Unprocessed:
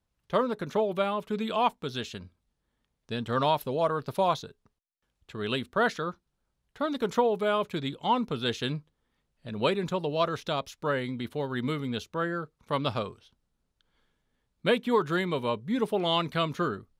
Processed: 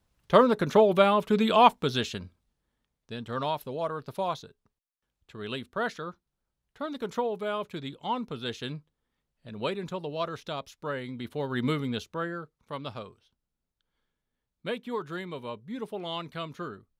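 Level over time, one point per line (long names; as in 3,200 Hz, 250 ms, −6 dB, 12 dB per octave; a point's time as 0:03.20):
0:01.83 +7 dB
0:03.14 −5 dB
0:11.04 −5 dB
0:11.69 +3 dB
0:12.78 −8.5 dB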